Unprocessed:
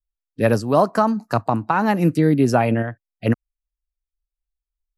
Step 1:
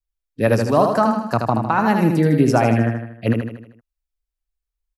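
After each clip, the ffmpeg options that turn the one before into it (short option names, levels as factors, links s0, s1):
-af "aecho=1:1:78|156|234|312|390|468:0.562|0.281|0.141|0.0703|0.0351|0.0176"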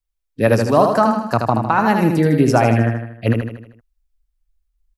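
-af "asubboost=boost=5.5:cutoff=72,volume=1.33"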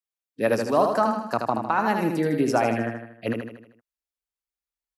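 -af "highpass=220,volume=0.473"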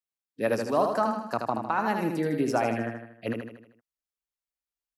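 -af "deesser=0.55,volume=0.631"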